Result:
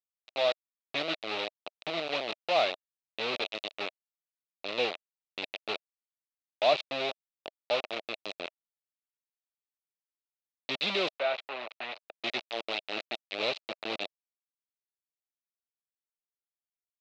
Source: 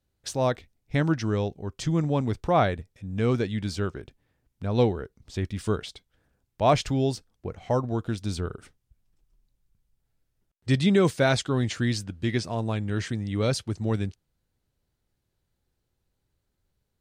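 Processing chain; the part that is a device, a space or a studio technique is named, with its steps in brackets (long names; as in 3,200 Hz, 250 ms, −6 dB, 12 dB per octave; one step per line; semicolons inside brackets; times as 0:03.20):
hand-held game console (bit reduction 4 bits; loudspeaker in its box 500–4,400 Hz, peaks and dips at 630 Hz +7 dB, 1,000 Hz −5 dB, 1,600 Hz −7 dB, 2,600 Hz +9 dB, 3,900 Hz +10 dB)
0:11.13–0:12.24: three-way crossover with the lows and the highs turned down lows −14 dB, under 520 Hz, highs −17 dB, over 2,500 Hz
level −6.5 dB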